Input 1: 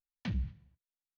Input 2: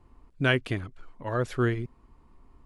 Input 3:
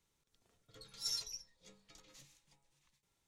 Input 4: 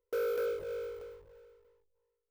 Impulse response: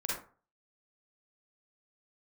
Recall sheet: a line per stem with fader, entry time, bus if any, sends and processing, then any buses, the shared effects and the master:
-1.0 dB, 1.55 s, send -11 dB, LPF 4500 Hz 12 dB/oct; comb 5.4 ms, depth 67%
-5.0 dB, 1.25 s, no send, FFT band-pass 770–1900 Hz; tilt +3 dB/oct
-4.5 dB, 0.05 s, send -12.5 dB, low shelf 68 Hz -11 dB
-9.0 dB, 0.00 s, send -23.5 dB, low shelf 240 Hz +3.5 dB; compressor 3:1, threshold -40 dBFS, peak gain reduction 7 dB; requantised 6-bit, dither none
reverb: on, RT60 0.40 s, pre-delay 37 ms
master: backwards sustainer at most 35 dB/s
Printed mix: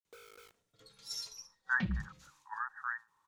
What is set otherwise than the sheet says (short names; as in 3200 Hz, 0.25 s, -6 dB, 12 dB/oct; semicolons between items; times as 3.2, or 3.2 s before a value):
stem 1: send off; stem 4 -9.0 dB -> -18.5 dB; master: missing backwards sustainer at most 35 dB/s